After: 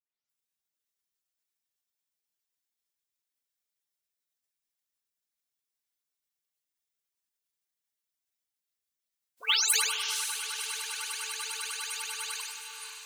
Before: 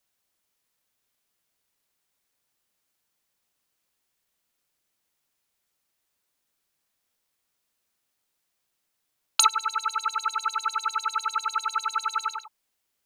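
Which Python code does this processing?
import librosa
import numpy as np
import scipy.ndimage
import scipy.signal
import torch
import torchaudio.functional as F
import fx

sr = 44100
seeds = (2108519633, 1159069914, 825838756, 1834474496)

p1 = fx.spec_delay(x, sr, highs='late', ms=295)
p2 = fx.vibrato(p1, sr, rate_hz=0.36, depth_cents=5.1)
p3 = fx.spec_gate(p2, sr, threshold_db=-15, keep='weak')
p4 = fx.echo_diffused(p3, sr, ms=541, feedback_pct=47, wet_db=-6.0)
p5 = fx.quant_float(p4, sr, bits=2)
p6 = p4 + (p5 * librosa.db_to_amplitude(-11.0))
p7 = fx.high_shelf(p6, sr, hz=2500.0, db=9.0)
y = fx.sustainer(p7, sr, db_per_s=41.0)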